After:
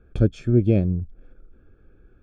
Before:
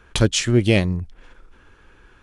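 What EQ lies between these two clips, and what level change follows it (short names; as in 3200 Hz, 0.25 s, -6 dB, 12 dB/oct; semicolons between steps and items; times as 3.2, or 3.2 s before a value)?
running mean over 45 samples; 0.0 dB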